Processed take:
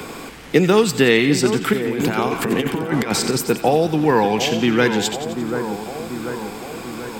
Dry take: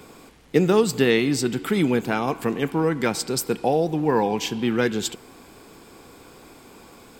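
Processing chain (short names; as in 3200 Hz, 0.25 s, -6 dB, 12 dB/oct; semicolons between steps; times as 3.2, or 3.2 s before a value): bell 2100 Hz +3.5 dB 1.9 oct; 1.73–3.4 negative-ratio compressor -26 dBFS, ratio -0.5; split-band echo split 1500 Hz, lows 0.739 s, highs 87 ms, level -10.5 dB; three-band squash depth 40%; gain +4.5 dB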